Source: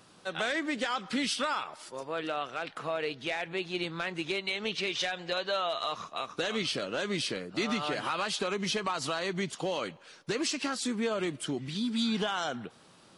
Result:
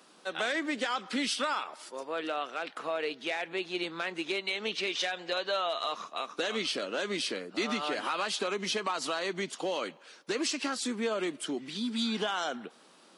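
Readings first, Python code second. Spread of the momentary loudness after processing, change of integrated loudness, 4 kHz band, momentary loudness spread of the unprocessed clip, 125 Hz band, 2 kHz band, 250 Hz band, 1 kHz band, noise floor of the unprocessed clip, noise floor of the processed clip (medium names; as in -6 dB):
6 LU, -0.5 dB, 0.0 dB, 6 LU, -8.0 dB, 0.0 dB, -2.0 dB, 0.0 dB, -58 dBFS, -59 dBFS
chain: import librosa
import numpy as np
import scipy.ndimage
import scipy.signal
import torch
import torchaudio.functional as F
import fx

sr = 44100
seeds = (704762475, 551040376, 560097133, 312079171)

y = scipy.signal.sosfilt(scipy.signal.butter(4, 220.0, 'highpass', fs=sr, output='sos'), x)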